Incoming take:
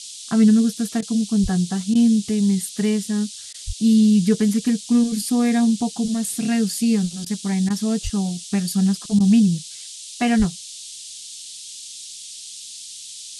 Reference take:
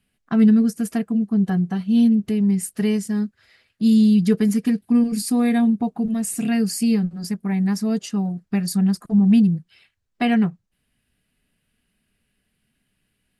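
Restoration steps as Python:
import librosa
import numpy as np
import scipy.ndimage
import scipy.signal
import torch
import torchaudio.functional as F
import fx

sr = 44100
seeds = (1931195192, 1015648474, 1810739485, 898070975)

y = fx.fix_deplosive(x, sr, at_s=(1.42, 3.66, 8.03, 10.38))
y = fx.fix_interpolate(y, sr, at_s=(1.01, 1.94, 3.53, 7.25, 7.69, 9.19), length_ms=11.0)
y = fx.noise_reduce(y, sr, print_start_s=12.59, print_end_s=13.09, reduce_db=30.0)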